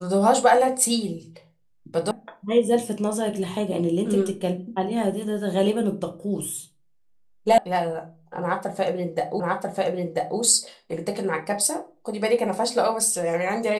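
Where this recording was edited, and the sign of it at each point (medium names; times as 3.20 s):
2.11 s: sound stops dead
7.58 s: sound stops dead
9.40 s: repeat of the last 0.99 s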